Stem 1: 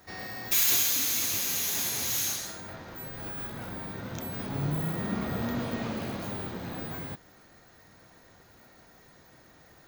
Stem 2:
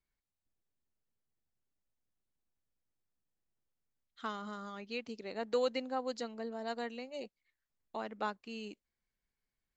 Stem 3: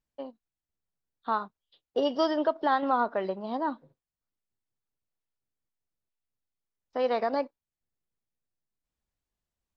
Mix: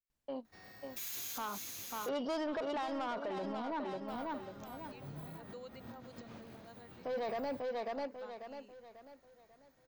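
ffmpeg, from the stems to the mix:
ffmpeg -i stem1.wav -i stem2.wav -i stem3.wav -filter_complex "[0:a]adelay=450,volume=-16.5dB,asplit=3[link_01][link_02][link_03];[link_01]atrim=end=2.09,asetpts=PTS-STARTPTS,afade=type=out:start_time=2.086:duration=0.004:curve=hsin[link_04];[link_02]atrim=start=2.09:end=4.08,asetpts=PTS-STARTPTS,volume=0[link_05];[link_03]atrim=start=4.08,asetpts=PTS-STARTPTS,afade=type=in:duration=0.004:curve=hsin[link_06];[link_04][link_05][link_06]concat=n=3:v=0:a=1[link_07];[1:a]volume=-18dB,asplit=2[link_08][link_09];[2:a]asoftclip=type=tanh:threshold=-26.5dB,adelay=100,volume=1.5dB,asplit=2[link_10][link_11];[link_11]volume=-8.5dB[link_12];[link_09]apad=whole_len=455355[link_13];[link_07][link_13]sidechaincompress=threshold=-59dB:ratio=8:attack=16:release=112[link_14];[link_12]aecho=0:1:543|1086|1629|2172|2715:1|0.38|0.144|0.0549|0.0209[link_15];[link_14][link_08][link_10][link_15]amix=inputs=4:normalize=0,alimiter=level_in=8.5dB:limit=-24dB:level=0:latency=1:release=15,volume=-8.5dB" out.wav

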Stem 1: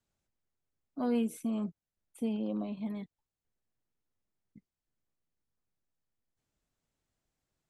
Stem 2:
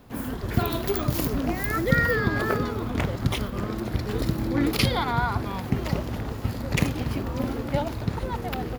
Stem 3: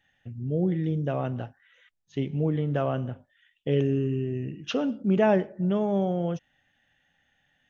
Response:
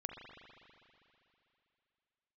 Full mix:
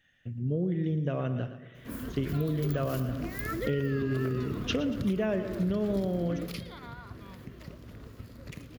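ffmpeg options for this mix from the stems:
-filter_complex "[1:a]alimiter=limit=-16dB:level=0:latency=1:release=371,adelay=1750,volume=-6.5dB,afade=type=out:start_time=6.15:duration=0.53:silence=0.398107,asplit=2[link_01][link_02];[link_02]volume=-18.5dB[link_03];[2:a]volume=0.5dB,asplit=3[link_04][link_05][link_06];[link_05]volume=-14dB[link_07];[link_06]volume=-11dB[link_08];[3:a]atrim=start_sample=2205[link_09];[link_07][link_09]afir=irnorm=-1:irlink=0[link_10];[link_03][link_08]amix=inputs=2:normalize=0,aecho=0:1:115|230|345|460|575:1|0.38|0.144|0.0549|0.0209[link_11];[link_01][link_04][link_10][link_11]amix=inputs=4:normalize=0,equalizer=frequency=820:width_type=o:width=0.33:gain=-13.5,acompressor=threshold=-25dB:ratio=10"

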